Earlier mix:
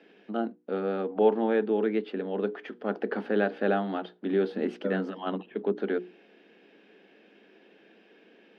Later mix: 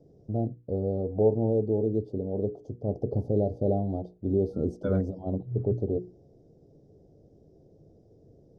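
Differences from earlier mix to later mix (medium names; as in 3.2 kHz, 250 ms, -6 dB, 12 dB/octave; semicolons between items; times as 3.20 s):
first voice: add elliptic band-stop 630–6000 Hz, stop band 70 dB; master: remove elliptic high-pass 200 Hz, stop band 40 dB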